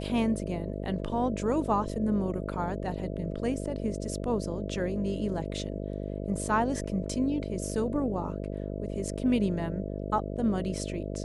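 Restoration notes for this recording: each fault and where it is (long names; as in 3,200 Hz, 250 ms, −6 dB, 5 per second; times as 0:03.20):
mains buzz 50 Hz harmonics 13 −35 dBFS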